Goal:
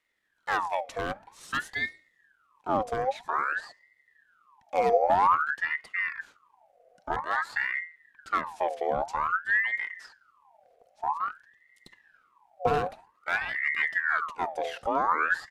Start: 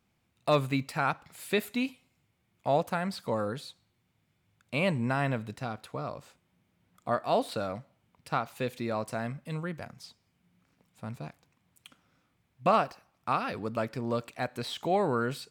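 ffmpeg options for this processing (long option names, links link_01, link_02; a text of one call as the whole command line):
ffmpeg -i in.wav -filter_complex "[0:a]bandreject=frequency=60:width_type=h:width=6,bandreject=frequency=120:width_type=h:width=6,bandreject=frequency=180:width_type=h:width=6,bandreject=frequency=240:width_type=h:width=6,bandreject=frequency=300:width_type=h:width=6,bandreject=frequency=360:width_type=h:width=6,asetrate=29433,aresample=44100,atempo=1.49831,acrossover=split=480[link_01][link_02];[link_01]asubboost=boost=10.5:cutoff=110[link_03];[link_02]aeval=exprs='0.0562*(abs(mod(val(0)/0.0562+3,4)-2)-1)':channel_layout=same[link_04];[link_03][link_04]amix=inputs=2:normalize=0,aeval=exprs='val(0)*sin(2*PI*1300*n/s+1300*0.55/0.51*sin(2*PI*0.51*n/s))':channel_layout=same" out.wav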